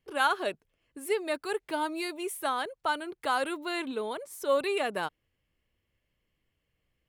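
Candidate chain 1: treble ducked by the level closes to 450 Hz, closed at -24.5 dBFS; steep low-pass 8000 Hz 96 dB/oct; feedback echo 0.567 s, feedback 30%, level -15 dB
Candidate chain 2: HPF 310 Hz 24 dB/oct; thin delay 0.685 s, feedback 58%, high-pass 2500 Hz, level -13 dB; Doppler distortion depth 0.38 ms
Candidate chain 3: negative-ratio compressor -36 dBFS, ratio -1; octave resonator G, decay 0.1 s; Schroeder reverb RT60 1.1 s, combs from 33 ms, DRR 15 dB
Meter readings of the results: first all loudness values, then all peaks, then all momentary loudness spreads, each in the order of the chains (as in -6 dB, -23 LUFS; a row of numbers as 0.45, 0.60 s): -35.0, -32.0, -48.0 LUFS; -19.0, -13.5, -30.5 dBFS; 15, 18, 8 LU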